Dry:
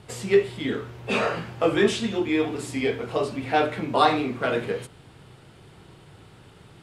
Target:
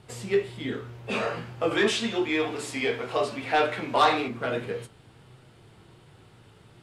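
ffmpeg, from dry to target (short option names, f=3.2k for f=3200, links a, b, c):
-filter_complex "[0:a]asettb=1/sr,asplit=3[a][b][c];[a]atrim=end=1.714[d];[b]atrim=start=1.71:end=4.28,asetpts=PTS-STARTPTS,afade=t=in:d=0.004:c=qsin,afade=t=out:st=2.566:d=0.004:c=qsin,asplit=2[e][f];[f]highpass=f=720:p=1,volume=12dB,asoftclip=type=tanh:threshold=-6.5dB[g];[e][g]amix=inputs=2:normalize=0,lowpass=f=7.3k:p=1,volume=-6dB[h];[c]atrim=start=4.276[i];[d][h]acrossfade=d=0.004:c1=hsin:c2=qsin[j];[j][i]acrossfade=d=0.004:c1=qsin:c2=hsin,flanger=delay=7.8:depth=1.5:regen=73:speed=1.3:shape=triangular"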